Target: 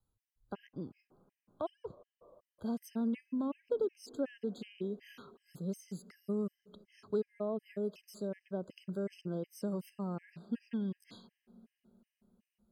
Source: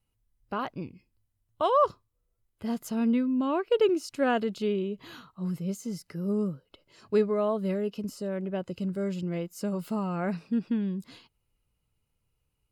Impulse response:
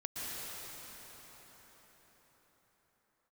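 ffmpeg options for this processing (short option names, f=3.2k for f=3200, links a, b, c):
-filter_complex "[0:a]acrossover=split=150|610[a][b][c];[a]acompressor=threshold=-54dB:ratio=4[d];[b]acompressor=threshold=-27dB:ratio=4[e];[c]acompressor=threshold=-45dB:ratio=4[f];[d][e][f]amix=inputs=3:normalize=0,asplit=2[g][h];[1:a]atrim=start_sample=2205,highshelf=f=2.7k:g=-9.5[i];[h][i]afir=irnorm=-1:irlink=0,volume=-23.5dB[j];[g][j]amix=inputs=2:normalize=0,afftfilt=real='re*gt(sin(2*PI*2.7*pts/sr)*(1-2*mod(floor(b*sr/1024/1600),2)),0)':imag='im*gt(sin(2*PI*2.7*pts/sr)*(1-2*mod(floor(b*sr/1024/1600),2)),0)':win_size=1024:overlap=0.75,volume=-4dB"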